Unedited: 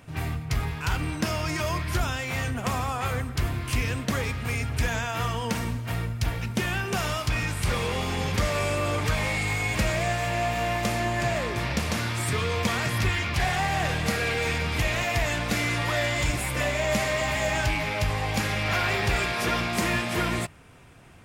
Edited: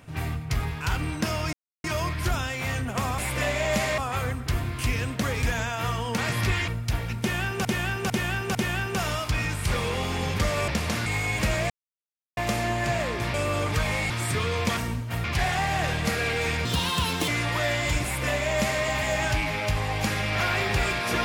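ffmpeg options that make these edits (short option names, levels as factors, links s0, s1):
-filter_complex "[0:a]asplit=20[s0][s1][s2][s3][s4][s5][s6][s7][s8][s9][s10][s11][s12][s13][s14][s15][s16][s17][s18][s19];[s0]atrim=end=1.53,asetpts=PTS-STARTPTS,afade=t=out:st=1.526:d=0.004:c=hsin,apad=pad_dur=0.31[s20];[s1]atrim=start=1.53:end=2.872,asetpts=PTS-STARTPTS,afade=t=in:d=0.004:c=hsin[s21];[s2]atrim=start=16.368:end=17.172[s22];[s3]atrim=start=2.868:end=4.322[s23];[s4]atrim=start=4.788:end=5.542[s24];[s5]atrim=start=12.748:end=13.252[s25];[s6]atrim=start=6.008:end=6.982[s26];[s7]atrim=start=6.528:end=6.982[s27];[s8]atrim=start=6.528:end=6.982[s28];[s9]atrim=start=6.528:end=8.662[s29];[s10]atrim=start=11.698:end=12.082[s30];[s11]atrim=start=9.418:end=10.06,asetpts=PTS-STARTPTS,afade=t=out:st=0.638:d=0.004:c=hsin[s31];[s12]atrim=start=10.06:end=10.73,asetpts=PTS-STARTPTS,volume=0[s32];[s13]atrim=start=10.73:end=11.702,asetpts=PTS-STARTPTS,afade=t=in:d=0.004:c=hsin[s33];[s14]atrim=start=8.658:end=9.422[s34];[s15]atrim=start=12.078:end=12.752[s35];[s16]atrim=start=5.538:end=6.012[s36];[s17]atrim=start=13.248:end=14.664[s37];[s18]atrim=start=14.66:end=15.61,asetpts=PTS-STARTPTS,asetrate=66591,aresample=44100,atrim=end_sample=27745,asetpts=PTS-STARTPTS[s38];[s19]atrim=start=15.606[s39];[s20][s21]concat=n=2:v=0:a=1[s40];[s40][s22]acrossfade=d=0.004:c1=hsin:c2=hsin[s41];[s41][s23]acrossfade=d=0.004:c1=hsin:c2=hsin[s42];[s42][s24]acrossfade=d=0.004:c1=hsin:c2=hsin[s43];[s43][s25]acrossfade=d=0.004:c1=hsin:c2=hsin[s44];[s44][s26]acrossfade=d=0.004:c1=hsin:c2=hsin[s45];[s45][s27]acrossfade=d=0.004:c1=hsin:c2=hsin[s46];[s46][s28]acrossfade=d=0.004:c1=hsin:c2=hsin[s47];[s47][s29]acrossfade=d=0.004:c1=hsin:c2=hsin[s48];[s48][s30]acrossfade=d=0.004:c1=hsin:c2=hsin[s49];[s31][s32][s33]concat=n=3:v=0:a=1[s50];[s49][s50]acrossfade=d=0.004:c1=hsin:c2=hsin[s51];[s51][s34]acrossfade=d=0.004:c1=hsin:c2=hsin[s52];[s52][s35]acrossfade=d=0.004:c1=hsin:c2=hsin[s53];[s53][s36]acrossfade=d=0.004:c1=hsin:c2=hsin[s54];[s54][s37]acrossfade=d=0.004:c1=hsin:c2=hsin[s55];[s55][s38]acrossfade=d=0.004:c1=hsin:c2=hsin[s56];[s56][s39]acrossfade=d=0.004:c1=hsin:c2=hsin"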